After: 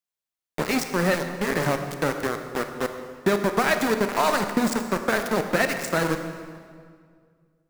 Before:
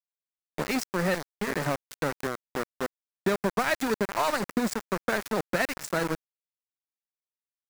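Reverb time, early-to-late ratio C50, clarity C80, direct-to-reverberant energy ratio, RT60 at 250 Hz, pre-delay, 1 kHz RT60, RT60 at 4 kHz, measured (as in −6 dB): 2.0 s, 7.5 dB, 8.5 dB, 6.5 dB, 2.4 s, 24 ms, 1.9 s, 1.5 s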